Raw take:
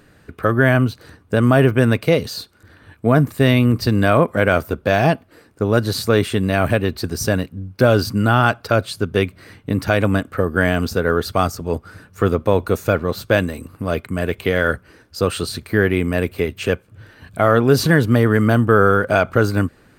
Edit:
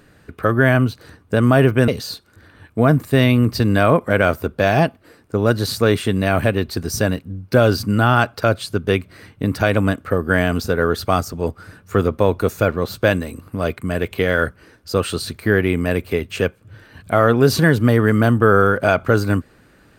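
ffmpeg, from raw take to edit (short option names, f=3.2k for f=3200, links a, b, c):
-filter_complex "[0:a]asplit=2[a][b];[a]atrim=end=1.882[c];[b]atrim=start=2.148[d];[c][d]acrossfade=d=0.004:c1=hsin:c2=hsin"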